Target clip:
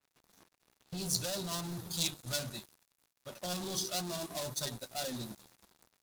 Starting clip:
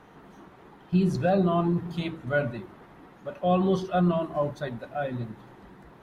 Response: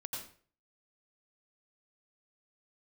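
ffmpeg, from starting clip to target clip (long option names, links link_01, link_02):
-filter_complex "[0:a]asettb=1/sr,asplit=3[link_01][link_02][link_03];[link_01]atrim=end=1.064[link_04];[link_02]atrim=start=1.06:end=3.29,asetpts=PTS-STARTPTS,afade=type=in:duration=0.004:curve=qsin,afade=type=out:start_time=2.226:duration=0.004:curve=qsin,equalizer=frequency=400:width=0.73:gain=-5[link_05];[link_03]atrim=start=3.286[link_06];[link_04][link_05]acrossfade=duration=0.004:curve1=hsin:curve2=qsin[link_07];[link_07][link_06]acrossfade=duration=0.004:curve1=qsin:curve2=hsin,alimiter=limit=-21dB:level=0:latency=1:release=191,flanger=delay=6.9:depth=8.4:regen=33:speed=0.64:shape=sinusoidal,asoftclip=type=hard:threshold=-35dB,aexciter=amount=8.6:drive=2.4:freq=3200,aeval=exprs='sgn(val(0))*max(abs(val(0))-0.00398,0)':channel_layout=same,bandreject=frequency=3100:width=17,adynamicequalizer=threshold=0.00141:dfrequency=4300:dqfactor=0.7:tfrequency=4300:tqfactor=0.7:attack=5:release=100:ratio=0.375:range=4:mode=boostabove:tftype=highshelf"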